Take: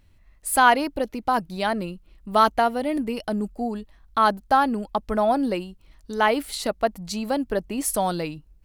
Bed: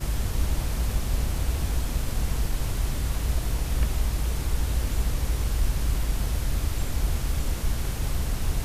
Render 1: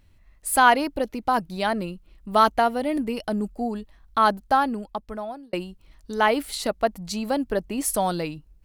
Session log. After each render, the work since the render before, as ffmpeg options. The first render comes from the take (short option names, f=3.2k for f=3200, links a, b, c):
-filter_complex "[0:a]asplit=2[a][b];[a]atrim=end=5.53,asetpts=PTS-STARTPTS,afade=t=out:st=4.4:d=1.13[c];[b]atrim=start=5.53,asetpts=PTS-STARTPTS,afade=t=in:d=0.004:c=hsin[d];[c][d]concat=n=2:v=0:a=1"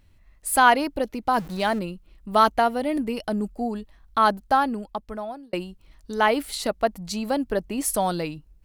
-filter_complex "[0:a]asettb=1/sr,asplit=3[a][b][c];[a]atrim=end=1.374[d];[b]atrim=start=1.37:end=1.79,asetpts=PTS-STARTPTS,afade=t=in:d=0.004:c=qsin,afade=t=out:st=0.416:d=0.004:c=qsin,aeval=exprs='val(0)+0.5*0.0158*sgn(val(0))':c=same[e];[c]atrim=start=1.786[f];[d][e]acrossfade=d=0.004:c1=hsin:c2=qsin[g];[g][f]acrossfade=d=0.004:c1=qsin:c2=hsin"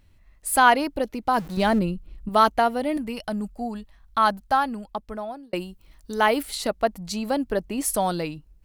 -filter_complex "[0:a]asettb=1/sr,asplit=3[a][b][c];[a]atrim=end=1.574[d];[b]atrim=start=1.57:end=2.29,asetpts=PTS-STARTPTS,afade=t=in:d=0.004:c=qsin,afade=t=out:st=0.716:d=0.004:c=qsin,lowshelf=f=290:g=10.5[e];[c]atrim=start=2.286[f];[d][e]acrossfade=d=0.004:c1=hsin:c2=qsin[g];[g][f]acrossfade=d=0.004:c1=qsin:c2=hsin,asettb=1/sr,asplit=3[h][i][j];[h]atrim=end=2.974[k];[i]atrim=start=2.97:end=4.87,asetpts=PTS-STARTPTS,afade=t=in:d=0.004:c=qsin,afade=t=out:st=1.896:d=0.004:c=qsin,equalizer=f=370:w=1.5:g=-8.5[l];[j]atrim=start=4.866[m];[k][l]acrossfade=d=0.004:c1=hsin:c2=qsin[n];[n][m]acrossfade=d=0.004:c1=qsin:c2=hsin,asettb=1/sr,asplit=3[o][p][q];[o]atrim=end=5.564[r];[p]atrim=start=5.56:end=6.43,asetpts=PTS-STARTPTS,afade=t=in:d=0.004:c=qsin,afade=t=out:st=0.866:d=0.004:c=qsin,highshelf=f=10k:g=10[s];[q]atrim=start=6.426[t];[r][s]acrossfade=d=0.004:c1=hsin:c2=qsin[u];[u][t]acrossfade=d=0.004:c1=qsin:c2=hsin"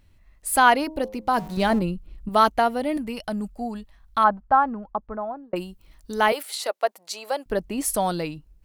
-filter_complex "[0:a]asettb=1/sr,asplit=3[a][b][c];[a]atrim=end=0.834[d];[b]atrim=start=0.83:end=1.82,asetpts=PTS-STARTPTS,afade=t=in:d=0.004:c=qsin,afade=t=out:st=0.986:d=0.004:c=qsin,bandreject=f=104.7:t=h:w=4,bandreject=f=209.4:t=h:w=4,bandreject=f=314.1:t=h:w=4,bandreject=f=418.8:t=h:w=4,bandreject=f=523.5:t=h:w=4,bandreject=f=628.2:t=h:w=4,bandreject=f=732.9:t=h:w=4,bandreject=f=837.6:t=h:w=4,bandreject=f=942.3:t=h:w=4,bandreject=f=1.047k:t=h:w=4,bandreject=f=1.1517k:t=h:w=4[e];[c]atrim=start=1.816[f];[d][e]acrossfade=d=0.004:c1=hsin:c2=qsin[g];[g][f]acrossfade=d=0.004:c1=qsin:c2=hsin,asplit=3[h][i][j];[h]afade=t=out:st=4.23:d=0.02[k];[i]lowpass=f=1.2k:t=q:w=1.6,afade=t=in:st=4.23:d=0.02,afade=t=out:st=5.55:d=0.02[l];[j]afade=t=in:st=5.55:d=0.02[m];[k][l][m]amix=inputs=3:normalize=0,asettb=1/sr,asplit=3[n][o][p];[n]atrim=end=6.324[q];[o]atrim=start=6.32:end=7.46,asetpts=PTS-STARTPTS,afade=t=in:d=0.004:c=qsin,afade=t=out:st=1.136:d=0.004:c=qsin,highpass=f=450:w=0.5412,highpass=f=450:w=1.3066[r];[p]atrim=start=7.456[s];[q][r]acrossfade=d=0.004:c1=hsin:c2=qsin[t];[t][s]acrossfade=d=0.004:c1=qsin:c2=hsin"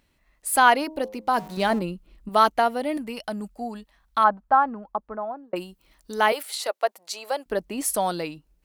-af "highpass=44,equalizer=f=82:t=o:w=1.7:g=-14.5"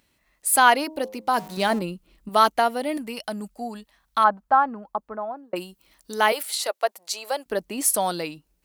-af "highpass=f=84:p=1,highshelf=f=3.7k:g=6"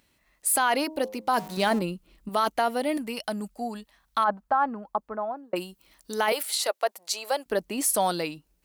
-af "alimiter=limit=-14dB:level=0:latency=1:release=13"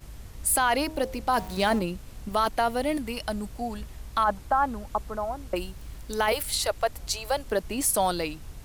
-filter_complex "[1:a]volume=-16dB[a];[0:a][a]amix=inputs=2:normalize=0"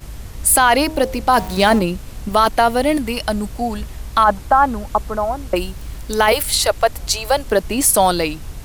-af "volume=10.5dB"